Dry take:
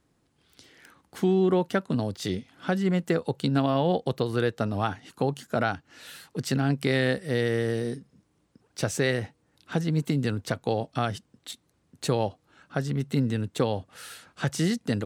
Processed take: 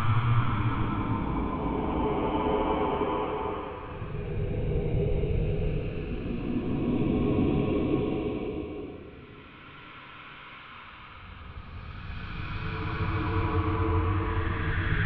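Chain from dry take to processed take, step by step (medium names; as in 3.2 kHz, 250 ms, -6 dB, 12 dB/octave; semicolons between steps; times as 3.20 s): mistuned SSB -370 Hz 290–3200 Hz; time-frequency box 5.53–5.98 s, 770–2200 Hz -17 dB; on a send at -21.5 dB: reverberation RT60 1.4 s, pre-delay 4 ms; on the sum: Paulstretch 6.2×, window 0.50 s, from 4.42 s; trim +3 dB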